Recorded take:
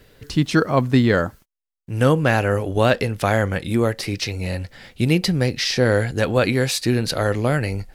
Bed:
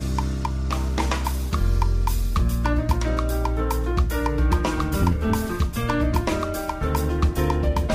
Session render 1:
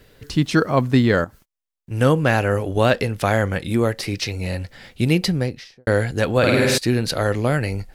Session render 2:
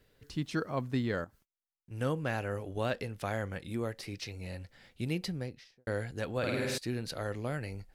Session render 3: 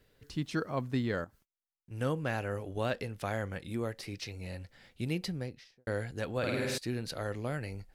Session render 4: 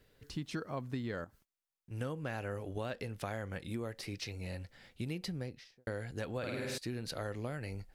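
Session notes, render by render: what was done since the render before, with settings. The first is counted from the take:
0:01.24–0:01.91: downward compressor 3 to 1, threshold −37 dBFS; 0:05.22–0:05.87: fade out and dull; 0:06.38–0:06.78: flutter between parallel walls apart 8.8 metres, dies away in 1.4 s
level −16 dB
no processing that can be heard
downward compressor, threshold −35 dBFS, peak gain reduction 8.5 dB

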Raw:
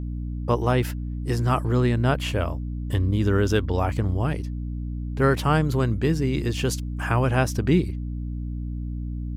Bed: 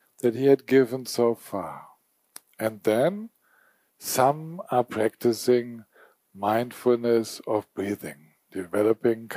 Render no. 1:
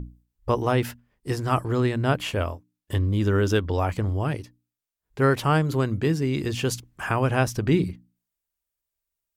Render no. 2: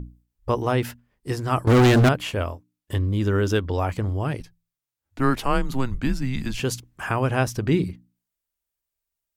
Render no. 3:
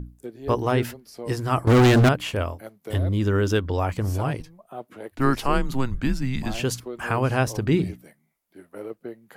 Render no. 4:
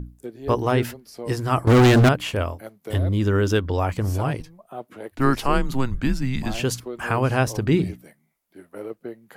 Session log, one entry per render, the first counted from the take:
mains-hum notches 60/120/180/240/300 Hz
0:01.67–0:02.09: leveller curve on the samples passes 5; 0:04.40–0:06.60: frequency shifter −130 Hz
mix in bed −14 dB
level +1.5 dB

